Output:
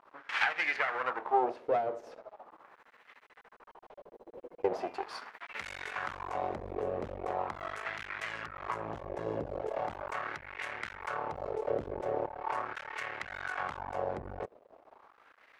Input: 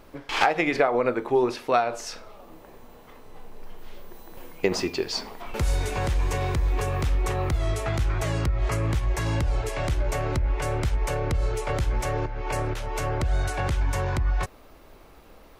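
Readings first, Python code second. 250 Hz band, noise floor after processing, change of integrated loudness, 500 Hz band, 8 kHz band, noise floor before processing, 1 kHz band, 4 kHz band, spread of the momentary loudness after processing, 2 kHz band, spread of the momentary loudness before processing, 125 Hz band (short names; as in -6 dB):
-13.5 dB, -64 dBFS, -9.5 dB, -8.0 dB, -21.0 dB, -50 dBFS, -5.5 dB, -11.5 dB, 14 LU, -4.0 dB, 7 LU, -24.0 dB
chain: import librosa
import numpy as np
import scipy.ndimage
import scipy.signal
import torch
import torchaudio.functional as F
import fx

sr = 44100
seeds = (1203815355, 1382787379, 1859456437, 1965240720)

y = np.maximum(x, 0.0)
y = fx.filter_lfo_bandpass(y, sr, shape='sine', hz=0.4, low_hz=470.0, high_hz=2000.0, q=2.2)
y = y * 10.0 ** (4.5 / 20.0)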